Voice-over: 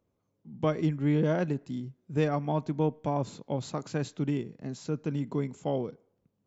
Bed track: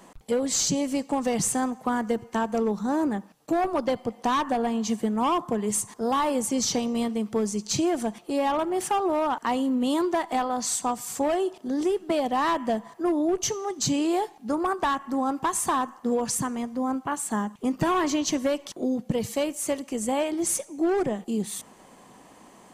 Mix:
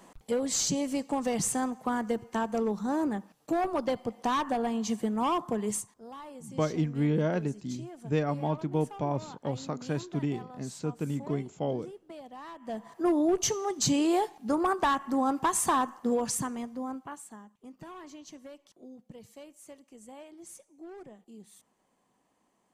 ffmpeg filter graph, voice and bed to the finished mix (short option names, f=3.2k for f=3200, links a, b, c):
-filter_complex "[0:a]adelay=5950,volume=-1dB[a];[1:a]volume=15.5dB,afade=t=out:st=5.69:d=0.23:silence=0.149624,afade=t=in:st=12.6:d=0.47:silence=0.105925,afade=t=out:st=15.88:d=1.5:silence=0.0891251[b];[a][b]amix=inputs=2:normalize=0"